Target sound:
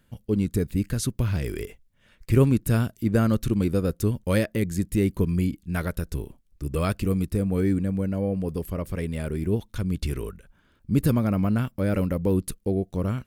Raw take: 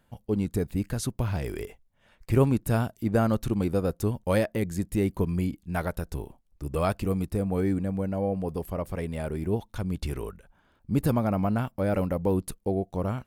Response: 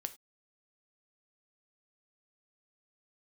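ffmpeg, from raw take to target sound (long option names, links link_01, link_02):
-af "equalizer=frequency=790:width_type=o:width=0.92:gain=-11.5,volume=4dB"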